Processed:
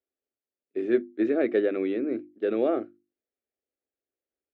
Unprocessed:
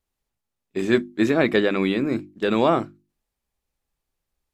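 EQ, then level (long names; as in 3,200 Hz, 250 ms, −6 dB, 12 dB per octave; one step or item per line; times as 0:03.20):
high-pass filter 220 Hz 12 dB per octave
low-pass filter 1,400 Hz 12 dB per octave
phaser with its sweep stopped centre 400 Hz, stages 4
−2.0 dB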